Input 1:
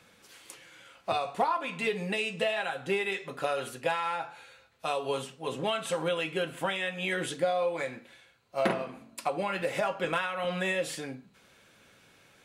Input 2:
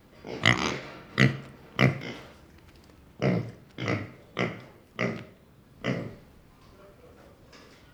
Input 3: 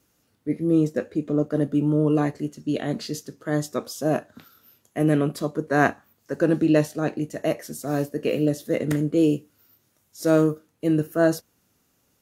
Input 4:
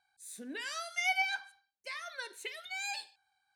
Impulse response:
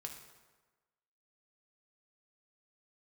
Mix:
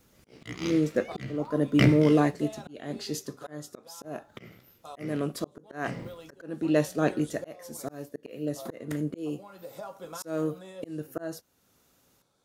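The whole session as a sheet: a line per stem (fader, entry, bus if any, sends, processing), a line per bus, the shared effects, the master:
-10.5 dB, 0.00 s, no send, high-order bell 2.2 kHz -13.5 dB 1.1 oct
-4.5 dB, 0.00 s, muted 3.18–4.04 s, no send, peaking EQ 950 Hz -9.5 dB 1.4 oct; waveshaping leveller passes 2
+1.0 dB, 0.00 s, no send, peaking EQ 150 Hz -3 dB 1.8 oct
-19.5 dB, 0.00 s, no send, none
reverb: none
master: slow attack 604 ms

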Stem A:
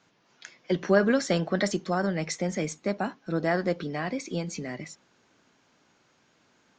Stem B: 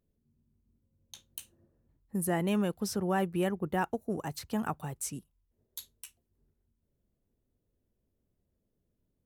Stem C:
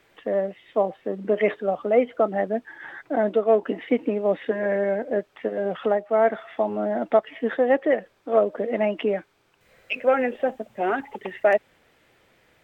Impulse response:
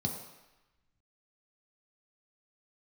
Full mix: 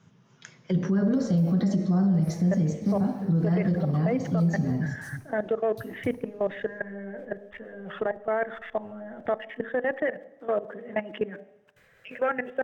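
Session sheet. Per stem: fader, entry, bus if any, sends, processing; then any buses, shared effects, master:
-1.0 dB, 0.00 s, no bus, send -10.5 dB, bass shelf 410 Hz +9.5 dB; auto duck -11 dB, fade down 0.35 s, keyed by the second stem
-7.0 dB, 0.00 s, bus A, send -3.5 dB, send-on-delta sampling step -35.5 dBFS; peaking EQ 110 Hz +12 dB 0.76 oct; compression 10:1, threshold -36 dBFS, peak gain reduction 12.5 dB
+0.5 dB, 2.15 s, bus A, send -24 dB, peaking EQ 1.7 kHz +10 dB 0.37 oct
bus A: 0.0 dB, level held to a coarse grid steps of 20 dB; peak limiter -15 dBFS, peak gain reduction 4.5 dB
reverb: on, RT60 1.0 s, pre-delay 3 ms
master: peak limiter -17 dBFS, peak gain reduction 11 dB

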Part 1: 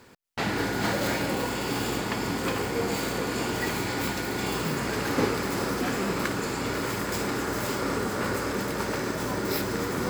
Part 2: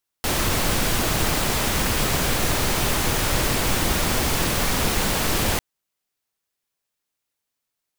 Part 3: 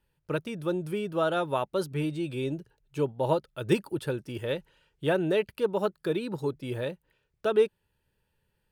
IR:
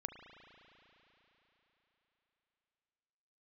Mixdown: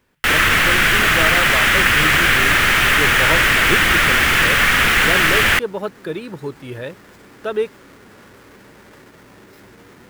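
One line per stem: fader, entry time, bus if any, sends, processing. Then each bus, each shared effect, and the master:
-18.0 dB, 0.00 s, no send, square wave that keeps the level; peak limiter -23.5 dBFS, peak gain reduction 10.5 dB
+0.5 dB, 0.00 s, no send, high-order bell 2 kHz +11 dB
+2.0 dB, 0.00 s, no send, none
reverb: none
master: peaking EQ 1.8 kHz +6 dB 0.78 oct

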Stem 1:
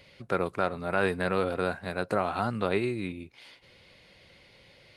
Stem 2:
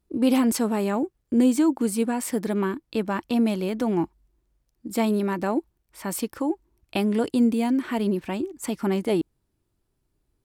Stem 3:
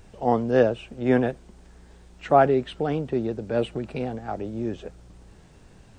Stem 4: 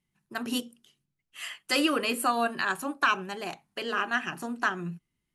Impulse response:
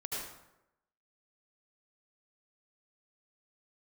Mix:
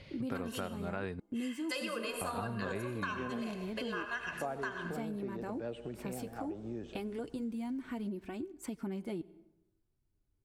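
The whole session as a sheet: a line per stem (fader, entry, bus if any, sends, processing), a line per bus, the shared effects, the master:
-0.5 dB, 0.00 s, muted 1.20–2.21 s, no send, low-pass 6.9 kHz; bass shelf 210 Hz +10.5 dB
-10.0 dB, 0.00 s, send -23.5 dB, bass shelf 240 Hz +9 dB; small resonant body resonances 1.5/2.2 kHz, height 7 dB; flange 0.24 Hz, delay 2.6 ms, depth 7.9 ms, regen -42%
-11.0 dB, 2.10 s, send -15 dB, none
-4.5 dB, 0.00 s, send -6 dB, comb 1.9 ms, depth 70%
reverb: on, RT60 0.90 s, pre-delay 68 ms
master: compression 5:1, threshold -36 dBFS, peak gain reduction 16 dB

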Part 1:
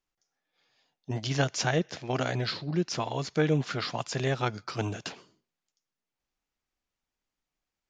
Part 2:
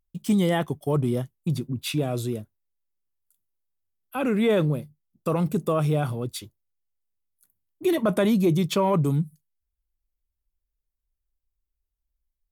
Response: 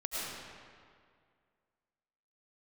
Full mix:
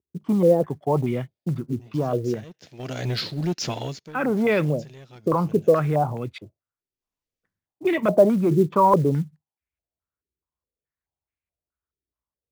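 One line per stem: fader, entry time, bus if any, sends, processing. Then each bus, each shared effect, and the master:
-1.0 dB, 0.70 s, no send, peaking EQ 1.1 kHz -8.5 dB 1.4 oct; waveshaping leveller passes 2; auto duck -20 dB, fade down 0.30 s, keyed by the second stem
-0.5 dB, 0.00 s, no send, high-pass 78 Hz 24 dB/octave; step-sequenced low-pass 4.7 Hz 390–2300 Hz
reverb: none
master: short-mantissa float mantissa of 4-bit

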